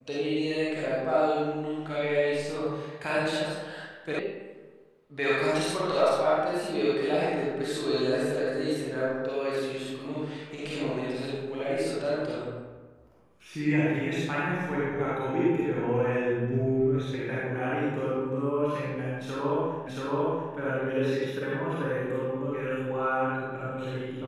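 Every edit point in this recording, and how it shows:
0:04.19: cut off before it has died away
0:19.87: the same again, the last 0.68 s

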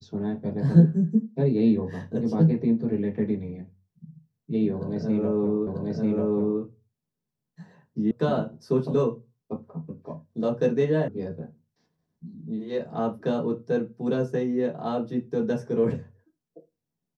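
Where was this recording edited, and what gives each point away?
0:05.67: the same again, the last 0.94 s
0:08.11: cut off before it has died away
0:11.08: cut off before it has died away

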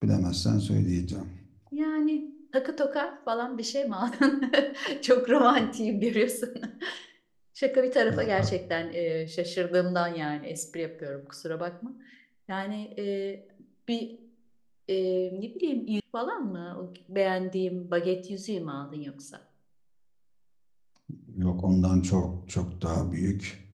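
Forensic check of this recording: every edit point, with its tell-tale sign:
0:16.00: cut off before it has died away

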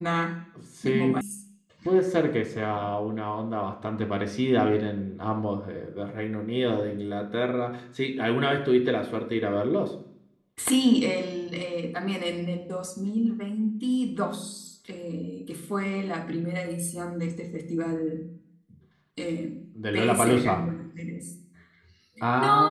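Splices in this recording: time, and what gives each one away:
0:01.21: cut off before it has died away

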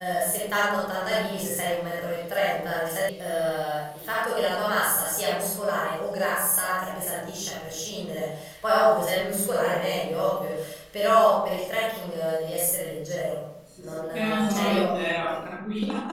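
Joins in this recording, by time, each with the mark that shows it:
0:03.09: cut off before it has died away

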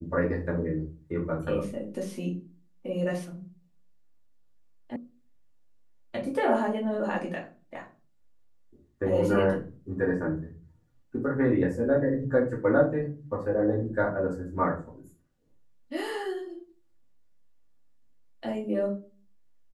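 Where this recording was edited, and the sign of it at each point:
0:04.96: cut off before it has died away

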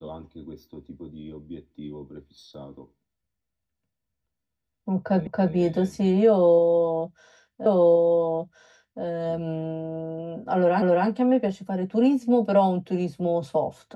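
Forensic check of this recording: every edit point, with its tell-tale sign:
0:05.27: the same again, the last 0.28 s
0:07.66: the same again, the last 1.37 s
0:10.82: the same again, the last 0.26 s

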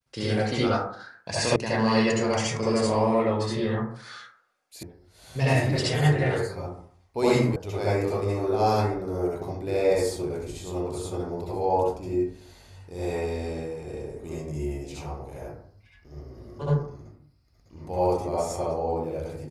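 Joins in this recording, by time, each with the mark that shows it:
0:01.56: cut off before it has died away
0:04.83: cut off before it has died away
0:07.56: cut off before it has died away

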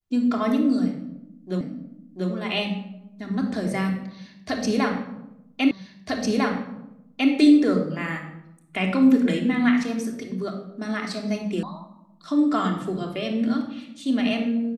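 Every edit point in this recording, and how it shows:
0:01.61: the same again, the last 0.69 s
0:05.71: the same again, the last 1.6 s
0:11.63: cut off before it has died away

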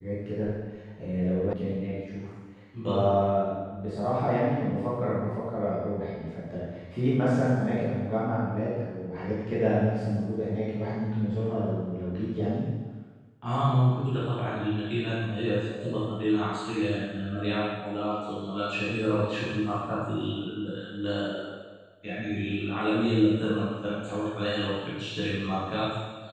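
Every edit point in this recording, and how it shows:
0:01.53: cut off before it has died away

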